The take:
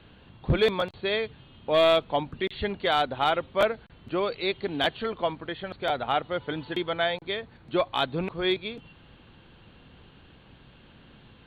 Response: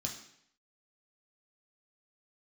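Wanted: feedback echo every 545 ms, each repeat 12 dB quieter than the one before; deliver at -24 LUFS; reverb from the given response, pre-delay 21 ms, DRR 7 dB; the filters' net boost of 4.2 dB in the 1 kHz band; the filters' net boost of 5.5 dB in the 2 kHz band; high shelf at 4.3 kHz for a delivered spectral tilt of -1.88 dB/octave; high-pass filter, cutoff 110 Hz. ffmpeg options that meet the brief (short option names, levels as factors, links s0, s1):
-filter_complex "[0:a]highpass=110,equalizer=f=1000:t=o:g=4.5,equalizer=f=2000:t=o:g=5,highshelf=f=4300:g=3,aecho=1:1:545|1090|1635:0.251|0.0628|0.0157,asplit=2[s0][s1];[1:a]atrim=start_sample=2205,adelay=21[s2];[s1][s2]afir=irnorm=-1:irlink=0,volume=0.447[s3];[s0][s3]amix=inputs=2:normalize=0,volume=0.891"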